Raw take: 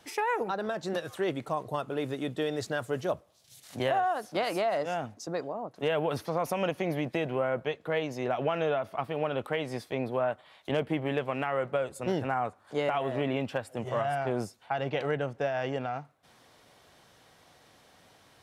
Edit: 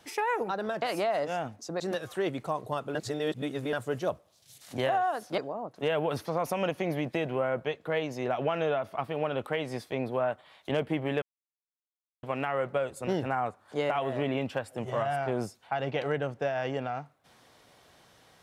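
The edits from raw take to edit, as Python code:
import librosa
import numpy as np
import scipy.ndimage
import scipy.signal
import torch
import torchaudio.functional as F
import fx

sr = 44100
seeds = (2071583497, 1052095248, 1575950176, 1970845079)

y = fx.edit(x, sr, fx.reverse_span(start_s=1.97, length_s=0.78),
    fx.move(start_s=4.4, length_s=0.98, to_s=0.82),
    fx.insert_silence(at_s=11.22, length_s=1.01), tone=tone)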